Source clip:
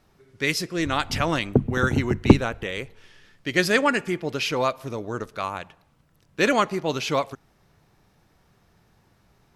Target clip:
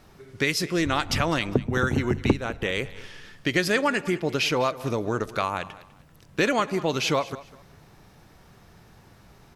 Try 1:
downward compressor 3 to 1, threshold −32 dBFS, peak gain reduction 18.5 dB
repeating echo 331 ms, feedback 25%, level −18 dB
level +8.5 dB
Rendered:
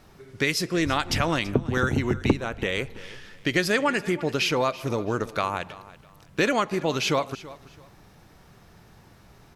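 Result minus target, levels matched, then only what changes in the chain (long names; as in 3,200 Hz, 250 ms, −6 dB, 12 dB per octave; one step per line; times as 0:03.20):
echo 130 ms late
change: repeating echo 201 ms, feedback 25%, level −18 dB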